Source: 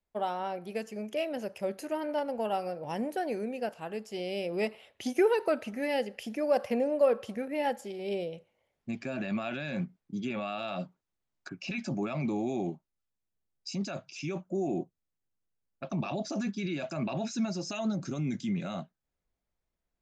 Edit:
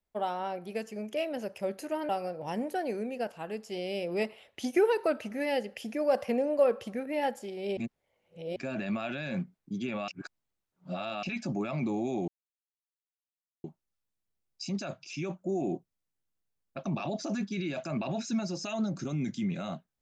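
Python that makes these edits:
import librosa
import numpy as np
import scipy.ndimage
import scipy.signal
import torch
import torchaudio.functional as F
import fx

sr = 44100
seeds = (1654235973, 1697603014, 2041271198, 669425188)

y = fx.edit(x, sr, fx.cut(start_s=2.09, length_s=0.42),
    fx.reverse_span(start_s=8.19, length_s=0.79),
    fx.reverse_span(start_s=10.5, length_s=1.15),
    fx.insert_silence(at_s=12.7, length_s=1.36), tone=tone)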